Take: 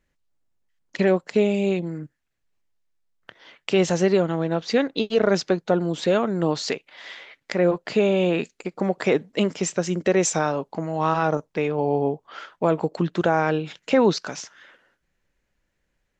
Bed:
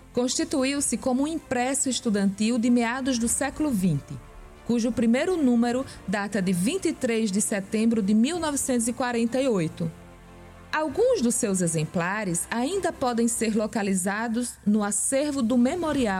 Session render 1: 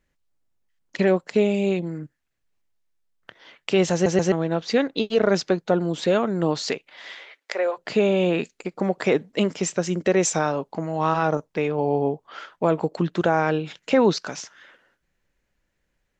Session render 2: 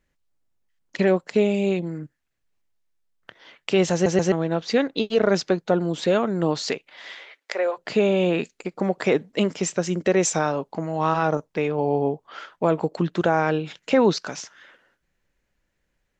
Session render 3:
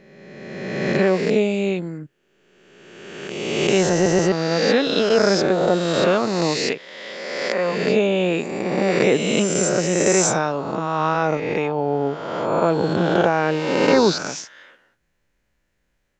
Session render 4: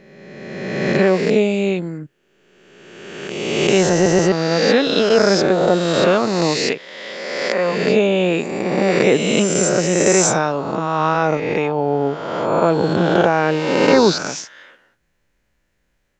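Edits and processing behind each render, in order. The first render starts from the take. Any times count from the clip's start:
3.93 stutter in place 0.13 s, 3 plays; 7.15–7.77 HPF 250 Hz -> 580 Hz 24 dB/oct
nothing audible
spectral swells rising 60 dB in 1.74 s
gain +3 dB; limiter -1 dBFS, peak gain reduction 2 dB

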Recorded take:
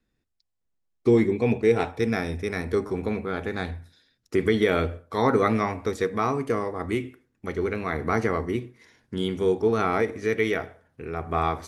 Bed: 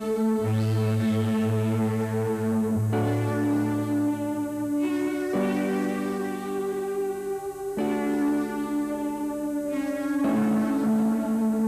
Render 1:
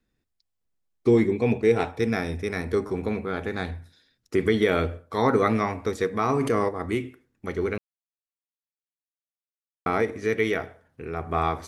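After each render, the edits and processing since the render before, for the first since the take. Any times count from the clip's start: 6.29–6.69 fast leveller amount 70%; 7.78–9.86 mute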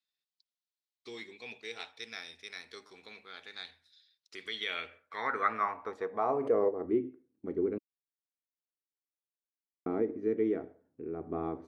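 band-pass sweep 4000 Hz -> 310 Hz, 4.43–7.07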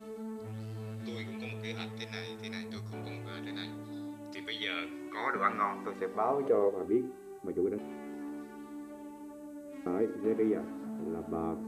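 add bed -17.5 dB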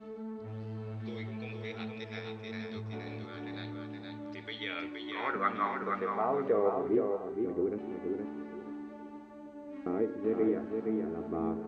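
air absorption 200 m; on a send: feedback echo 0.47 s, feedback 28%, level -4.5 dB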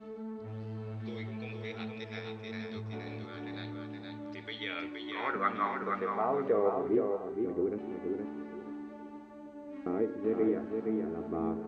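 nothing audible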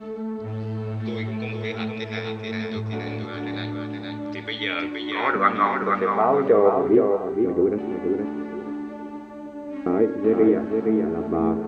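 gain +11.5 dB

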